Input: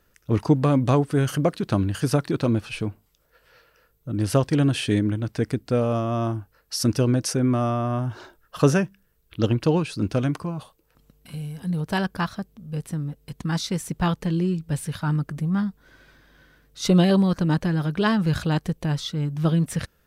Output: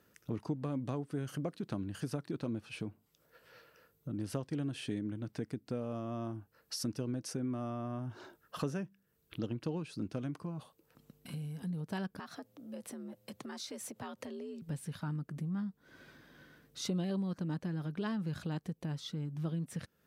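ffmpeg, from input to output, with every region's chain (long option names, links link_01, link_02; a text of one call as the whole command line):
ffmpeg -i in.wav -filter_complex "[0:a]asettb=1/sr,asplit=3[link_01][link_02][link_03];[link_01]atrim=end=12.194[link_04];[link_02]atrim=start=12.19:end=14.62,asetpts=PTS-STARTPTS,afade=type=in:duration=0.004:curve=qsin,afade=type=out:start_time=2.426:duration=0.004:curve=qsin,acompressor=threshold=-31dB:ratio=5:attack=3.2:release=140:knee=1:detection=peak,afreqshift=65,lowshelf=frequency=370:width_type=q:width=1.5:gain=-8[link_05];[link_03]atrim=start=14.616[link_06];[link_04][link_05]acrossfade=duration=0.004:curve1=hsin:curve2=qsin[link_07];[link_07][link_06]acrossfade=duration=0.004:curve1=qsin:curve2=hsin,highpass=100,equalizer=frequency=230:width_type=o:width=1.9:gain=5,acompressor=threshold=-38dB:ratio=2.5,volume=-4dB" out.wav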